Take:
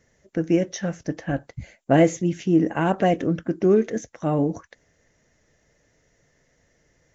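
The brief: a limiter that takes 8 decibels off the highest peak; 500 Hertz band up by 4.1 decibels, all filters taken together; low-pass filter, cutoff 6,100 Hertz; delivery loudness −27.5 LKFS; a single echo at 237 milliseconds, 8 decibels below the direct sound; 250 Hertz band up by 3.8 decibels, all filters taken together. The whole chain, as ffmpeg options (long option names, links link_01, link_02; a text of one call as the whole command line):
ffmpeg -i in.wav -af "lowpass=6100,equalizer=frequency=250:width_type=o:gain=4,equalizer=frequency=500:width_type=o:gain=4,alimiter=limit=-9.5dB:level=0:latency=1,aecho=1:1:237:0.398,volume=-6dB" out.wav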